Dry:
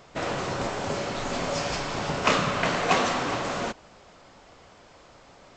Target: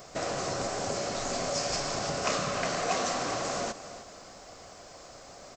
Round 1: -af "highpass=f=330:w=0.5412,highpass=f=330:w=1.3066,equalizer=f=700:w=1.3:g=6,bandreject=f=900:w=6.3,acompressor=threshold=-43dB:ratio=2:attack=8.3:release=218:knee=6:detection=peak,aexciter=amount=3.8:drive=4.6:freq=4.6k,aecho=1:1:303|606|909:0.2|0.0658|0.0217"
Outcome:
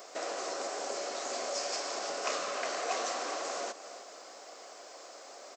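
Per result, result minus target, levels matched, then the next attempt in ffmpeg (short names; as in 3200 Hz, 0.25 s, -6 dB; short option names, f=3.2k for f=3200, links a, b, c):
250 Hz band -6.5 dB; compressor: peak gain reduction +4 dB
-af "equalizer=f=700:w=1.3:g=6,bandreject=f=900:w=6.3,acompressor=threshold=-43dB:ratio=2:attack=8.3:release=218:knee=6:detection=peak,aexciter=amount=3.8:drive=4.6:freq=4.6k,aecho=1:1:303|606|909:0.2|0.0658|0.0217"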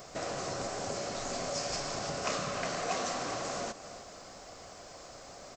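compressor: peak gain reduction +4 dB
-af "equalizer=f=700:w=1.3:g=6,bandreject=f=900:w=6.3,acompressor=threshold=-34.5dB:ratio=2:attack=8.3:release=218:knee=6:detection=peak,aexciter=amount=3.8:drive=4.6:freq=4.6k,aecho=1:1:303|606|909:0.2|0.0658|0.0217"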